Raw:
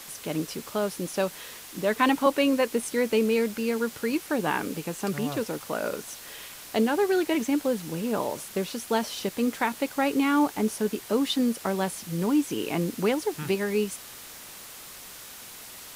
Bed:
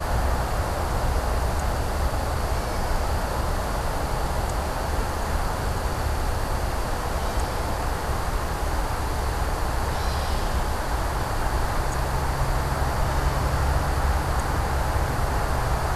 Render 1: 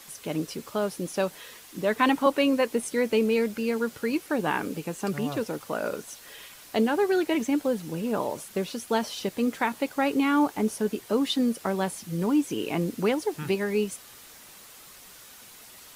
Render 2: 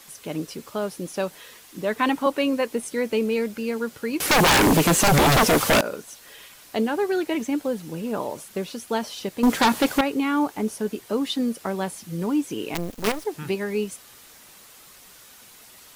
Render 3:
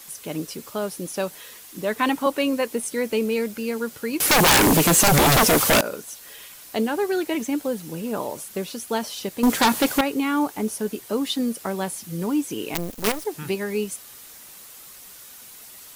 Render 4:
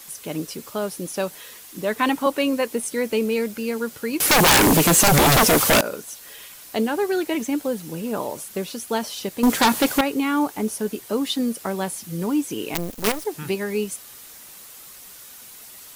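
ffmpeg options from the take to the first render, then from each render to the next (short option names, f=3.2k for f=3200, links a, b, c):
-af "afftdn=nr=6:nf=-44"
-filter_complex "[0:a]asettb=1/sr,asplit=3[a][b][c];[a]atrim=end=4.204[d];[b]atrim=start=4.2:end=5.81,asetpts=PTS-STARTPTS,afade=t=in:d=0.004:c=qsin,afade=t=out:st=1.606:d=0.004:c=qsin,aeval=exprs='0.224*sin(PI/2*7.94*val(0)/0.224)':c=same[e];[c]atrim=start=5.806[f];[d][e]acrossfade=d=0.004:c1=hsin:c2=qsin[g];[g][f]acrossfade=d=0.004:c1=qsin:c2=hsin,asettb=1/sr,asplit=3[h][i][j];[h]atrim=end=9.434[k];[i]atrim=start=9.43:end=10.01,asetpts=PTS-STARTPTS,afade=t=in:d=0.004:c=qsin,afade=t=out:st=0.576:d=0.004:c=qsin,aeval=exprs='0.237*sin(PI/2*2.82*val(0)/0.237)':c=same[l];[j]atrim=start=10.006[m];[k][l]acrossfade=d=0.004:c1=hsin:c2=qsin[n];[n][m]acrossfade=d=0.004:c1=qsin:c2=hsin,asettb=1/sr,asplit=3[o][p][q];[o]atrim=end=12.744[r];[p]atrim=start=12.74:end=13.25,asetpts=PTS-STARTPTS,afade=t=in:d=0.004:c=qsin,afade=t=out:st=0.506:d=0.004:c=qsin,acrusher=bits=4:dc=4:mix=0:aa=0.000001[s];[q]atrim=start=13.246[t];[r][s]acrossfade=d=0.004:c1=hsin:c2=qsin[u];[u][t]acrossfade=d=0.004:c1=qsin:c2=hsin"
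-af "highshelf=f=7k:g=8.5"
-af "volume=1dB"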